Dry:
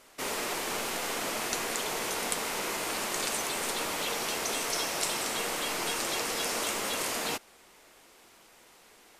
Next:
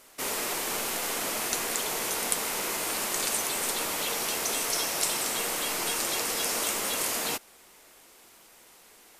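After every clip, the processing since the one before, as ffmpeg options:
-af "highshelf=f=8500:g=10"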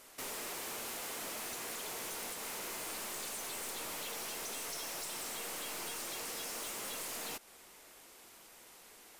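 -af "acompressor=threshold=0.0178:ratio=2.5,aeval=exprs='(tanh(63.1*val(0)+0.15)-tanh(0.15))/63.1':c=same,volume=0.794"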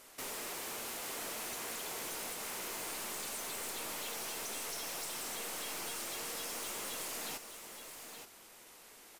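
-af "aecho=1:1:875:0.376"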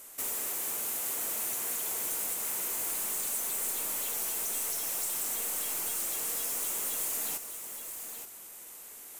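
-af "areverse,acompressor=mode=upward:threshold=0.00282:ratio=2.5,areverse,aexciter=amount=4.7:drive=1.3:freq=6700"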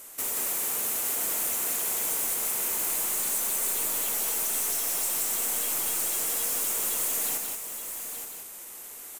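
-af "aecho=1:1:176:0.631,volume=1.5"

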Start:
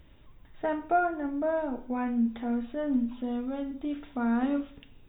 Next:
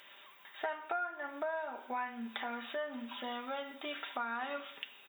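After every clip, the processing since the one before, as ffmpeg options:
-af "highpass=1100,aecho=1:1:5.1:0.38,acompressor=threshold=0.00398:ratio=5,volume=3.98"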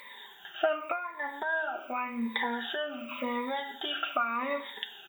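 -af "afftfilt=real='re*pow(10,20/40*sin(2*PI*(0.97*log(max(b,1)*sr/1024/100)/log(2)-(-0.88)*(pts-256)/sr)))':imag='im*pow(10,20/40*sin(2*PI*(0.97*log(max(b,1)*sr/1024/100)/log(2)-(-0.88)*(pts-256)/sr)))':win_size=1024:overlap=0.75,volume=1.58"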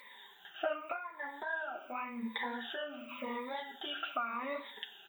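-af "flanger=delay=3.9:depth=6.9:regen=-36:speed=1.9:shape=sinusoidal,volume=0.708"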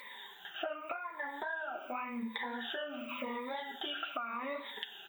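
-af "acompressor=threshold=0.00794:ratio=4,volume=1.88"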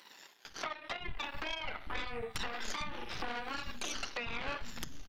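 -filter_complex "[0:a]aeval=exprs='0.0944*(cos(1*acos(clip(val(0)/0.0944,-1,1)))-cos(1*PI/2))+0.0237*(cos(3*acos(clip(val(0)/0.0944,-1,1)))-cos(3*PI/2))+0.0376*(cos(8*acos(clip(val(0)/0.0944,-1,1)))-cos(8*PI/2))':c=same,aresample=32000,aresample=44100,acrossover=split=220[s0][s1];[s0]adelay=450[s2];[s2][s1]amix=inputs=2:normalize=0,volume=0.708"

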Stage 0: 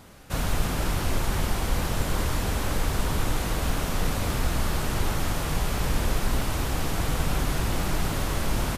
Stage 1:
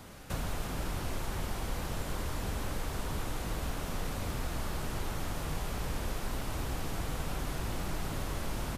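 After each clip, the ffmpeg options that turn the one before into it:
-filter_complex "[0:a]acrossover=split=290|1100[s0][s1][s2];[s0]acompressor=threshold=0.02:ratio=4[s3];[s1]acompressor=threshold=0.00631:ratio=4[s4];[s2]acompressor=threshold=0.00562:ratio=4[s5];[s3][s4][s5]amix=inputs=3:normalize=0"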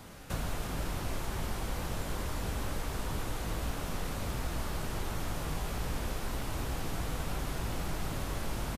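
-filter_complex "[0:a]asplit=2[s0][s1];[s1]adelay=18,volume=0.251[s2];[s0][s2]amix=inputs=2:normalize=0"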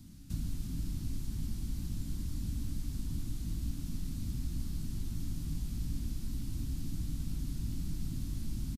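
-af "firequalizer=gain_entry='entry(280,0);entry(440,-28);entry(4400,-7)':delay=0.05:min_phase=1"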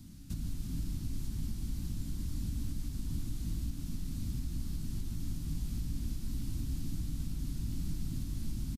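-af "alimiter=level_in=1.58:limit=0.0631:level=0:latency=1:release=211,volume=0.631,volume=1.19"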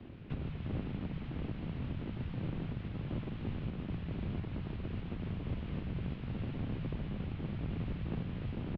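-af "aeval=exprs='abs(val(0))':c=same,highpass=f=190:t=q:w=0.5412,highpass=f=190:t=q:w=1.307,lowpass=f=3000:t=q:w=0.5176,lowpass=f=3000:t=q:w=0.7071,lowpass=f=3000:t=q:w=1.932,afreqshift=-120,volume=2.99"

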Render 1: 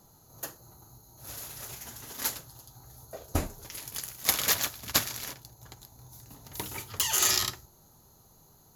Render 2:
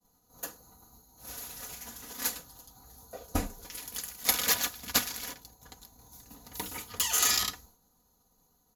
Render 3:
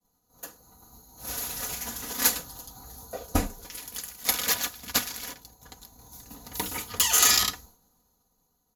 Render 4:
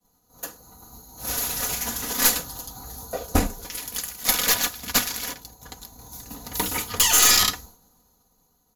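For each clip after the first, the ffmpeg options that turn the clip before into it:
-af "agate=range=0.0224:threshold=0.00282:ratio=3:detection=peak,aecho=1:1:4.1:0.72,volume=0.75"
-af "dynaudnorm=f=120:g=17:m=6.31,volume=0.631"
-af "aeval=exprs='(tanh(7.94*val(0)+0.3)-tanh(0.3))/7.94':c=same,volume=2.37"

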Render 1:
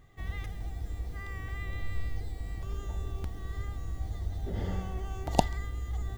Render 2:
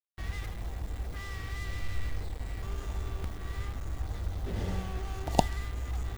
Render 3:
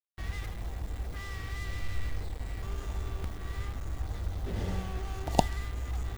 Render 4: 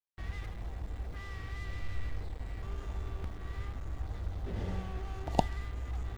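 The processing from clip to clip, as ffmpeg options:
-af "acrusher=bits=6:mix=0:aa=0.5"
-af anull
-af "lowpass=f=3300:p=1,volume=0.708"

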